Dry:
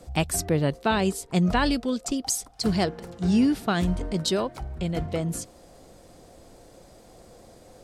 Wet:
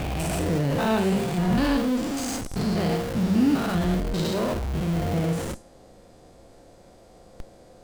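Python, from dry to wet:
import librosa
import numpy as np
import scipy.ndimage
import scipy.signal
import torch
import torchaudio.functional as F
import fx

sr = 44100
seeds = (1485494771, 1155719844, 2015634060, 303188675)

p1 = fx.spec_steps(x, sr, hold_ms=200)
p2 = fx.high_shelf(p1, sr, hz=6000.0, db=-7.0)
p3 = fx.rev_schroeder(p2, sr, rt60_s=0.31, comb_ms=32, drr_db=4.5)
p4 = fx.schmitt(p3, sr, flips_db=-38.5)
y = p3 + (p4 * librosa.db_to_amplitude(-3.0))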